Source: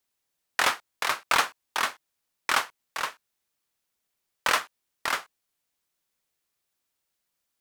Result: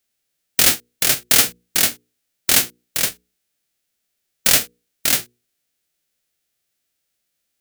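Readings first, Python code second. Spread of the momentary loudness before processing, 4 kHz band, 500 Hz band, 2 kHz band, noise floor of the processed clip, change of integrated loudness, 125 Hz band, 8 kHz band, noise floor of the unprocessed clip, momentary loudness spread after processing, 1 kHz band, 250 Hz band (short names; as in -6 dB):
10 LU, +11.0 dB, +6.0 dB, +2.5 dB, -75 dBFS, +11.0 dB, +18.5 dB, +18.0 dB, -81 dBFS, 9 LU, -5.0 dB, +14.5 dB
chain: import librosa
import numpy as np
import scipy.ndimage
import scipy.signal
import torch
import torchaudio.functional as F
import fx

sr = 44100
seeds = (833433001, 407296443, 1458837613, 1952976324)

y = fx.envelope_flatten(x, sr, power=0.1)
y = fx.peak_eq(y, sr, hz=1000.0, db=-12.0, octaves=0.59)
y = 10.0 ** (-10.5 / 20.0) * np.tanh(y / 10.0 ** (-10.5 / 20.0))
y = fx.hum_notches(y, sr, base_hz=60, count=8)
y = fx.leveller(y, sr, passes=1)
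y = y * 10.0 ** (8.0 / 20.0)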